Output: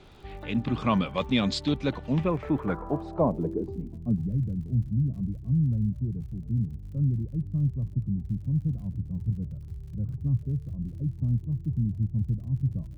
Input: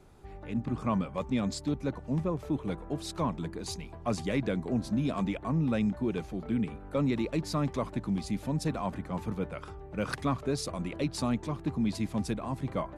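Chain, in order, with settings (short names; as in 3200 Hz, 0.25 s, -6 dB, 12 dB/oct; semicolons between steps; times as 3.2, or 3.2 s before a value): high shelf 4600 Hz +10.5 dB; low-pass sweep 3400 Hz -> 120 Hz, 2.1–4.39; crackle 65/s -52 dBFS; gain +4.5 dB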